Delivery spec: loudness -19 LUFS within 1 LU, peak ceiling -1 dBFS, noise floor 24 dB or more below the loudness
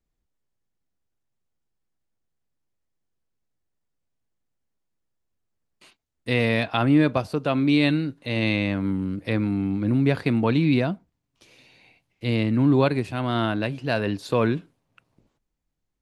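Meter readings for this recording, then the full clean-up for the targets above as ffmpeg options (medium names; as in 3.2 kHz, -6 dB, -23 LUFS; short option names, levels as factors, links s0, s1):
loudness -23.0 LUFS; peak level -6.5 dBFS; loudness target -19.0 LUFS
-> -af "volume=1.58"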